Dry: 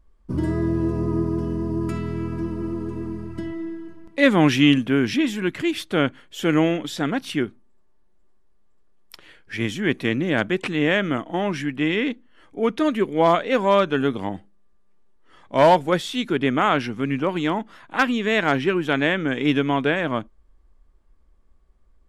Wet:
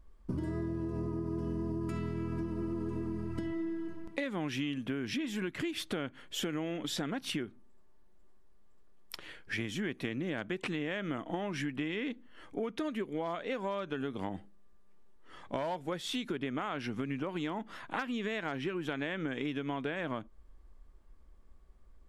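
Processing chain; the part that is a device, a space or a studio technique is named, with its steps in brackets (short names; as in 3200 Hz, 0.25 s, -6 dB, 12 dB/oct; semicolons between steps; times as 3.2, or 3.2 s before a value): serial compression, peaks first (compressor, threshold -26 dBFS, peak gain reduction 15 dB; compressor 3:1, threshold -34 dBFS, peak gain reduction 8.5 dB)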